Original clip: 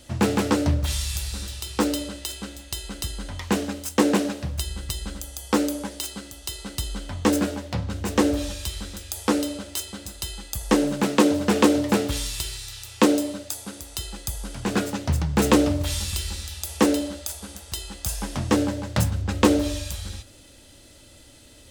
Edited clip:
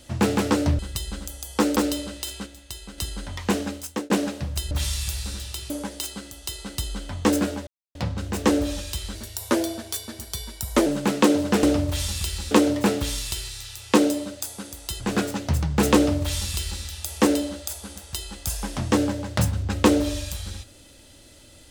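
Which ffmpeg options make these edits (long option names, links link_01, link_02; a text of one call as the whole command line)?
ffmpeg -i in.wav -filter_complex "[0:a]asplit=14[link_01][link_02][link_03][link_04][link_05][link_06][link_07][link_08][link_09][link_10][link_11][link_12][link_13][link_14];[link_01]atrim=end=0.792[link_15];[link_02]atrim=start=4.728:end=5.702[link_16];[link_03]atrim=start=1.778:end=2.482[link_17];[link_04]atrim=start=2.478:end=3.002,asetpts=PTS-STARTPTS,volume=-5.5dB[link_18];[link_05]atrim=start=2.998:end=4.12,asetpts=PTS-STARTPTS,afade=type=out:start_time=0.752:duration=0.37[link_19];[link_06]atrim=start=4.12:end=4.732,asetpts=PTS-STARTPTS,afade=type=in:duration=0.004:curve=hsin[link_20];[link_07]atrim=start=0.788:end=1.782[link_21];[link_08]atrim=start=5.698:end=7.67,asetpts=PTS-STARTPTS,afade=type=out:start_time=1.968:duration=0.004:curve=hsin,apad=pad_dur=0.28[link_22];[link_09]atrim=start=7.67:end=8.874,asetpts=PTS-STARTPTS,afade=type=in:duration=0.004:curve=hsin[link_23];[link_10]atrim=start=8.87:end=10.82,asetpts=PTS-STARTPTS,asetrate=50274,aresample=44100,atrim=end_sample=75434,asetpts=PTS-STARTPTS[link_24];[link_11]atrim=start=10.816:end=11.592[link_25];[link_12]atrim=start=15.548:end=16.432[link_26];[link_13]atrim=start=11.588:end=14.082[link_27];[link_14]atrim=start=14.588[link_28];[link_15][link_16]acrossfade=duration=0.004:curve1=hsin:curve2=hsin[link_29];[link_29][link_17]acrossfade=duration=0.004:curve1=hsin:curve2=hsin[link_30];[link_30][link_18]acrossfade=duration=0.004:curve1=hsin:curve2=hsin[link_31];[link_19][link_20]concat=n=2:v=0:a=1[link_32];[link_31][link_32]acrossfade=duration=0.004:curve1=hsin:curve2=hsin[link_33];[link_33][link_21]acrossfade=duration=0.004:curve1=hsin:curve2=hsin[link_34];[link_22][link_23]concat=n=2:v=0:a=1[link_35];[link_34][link_35]acrossfade=duration=0.004:curve1=hsin:curve2=hsin[link_36];[link_36][link_24]acrossfade=duration=0.004:curve1=hsin:curve2=hsin[link_37];[link_37][link_25]acrossfade=duration=0.004:curve1=hsin:curve2=hsin[link_38];[link_38][link_26]acrossfade=duration=0.004:curve1=hsin:curve2=hsin[link_39];[link_39][link_27]acrossfade=duration=0.004:curve1=hsin:curve2=hsin[link_40];[link_40][link_28]acrossfade=duration=0.004:curve1=hsin:curve2=hsin" out.wav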